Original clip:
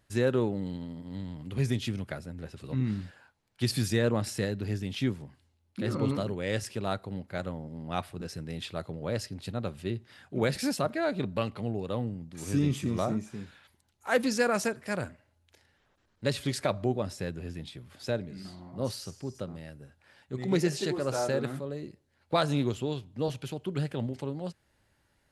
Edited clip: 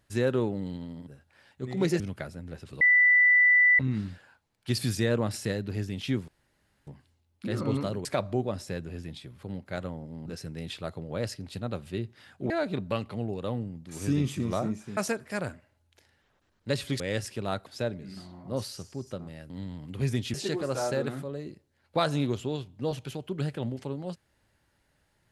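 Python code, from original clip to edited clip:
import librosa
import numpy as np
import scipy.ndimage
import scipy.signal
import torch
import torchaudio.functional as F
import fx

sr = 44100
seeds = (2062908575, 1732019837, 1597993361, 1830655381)

y = fx.edit(x, sr, fx.swap(start_s=1.07, length_s=0.84, other_s=19.78, other_length_s=0.93),
    fx.insert_tone(at_s=2.72, length_s=0.98, hz=1980.0, db=-16.5),
    fx.insert_room_tone(at_s=5.21, length_s=0.59),
    fx.swap(start_s=6.39, length_s=0.66, other_s=16.56, other_length_s=1.38),
    fx.cut(start_s=7.88, length_s=0.3),
    fx.cut(start_s=10.42, length_s=0.54),
    fx.cut(start_s=13.43, length_s=1.1), tone=tone)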